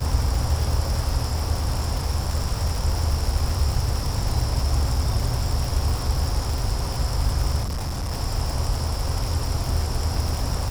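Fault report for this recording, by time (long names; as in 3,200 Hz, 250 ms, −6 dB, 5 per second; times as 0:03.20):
surface crackle 310 per second −26 dBFS
0:07.63–0:08.12: clipping −24 dBFS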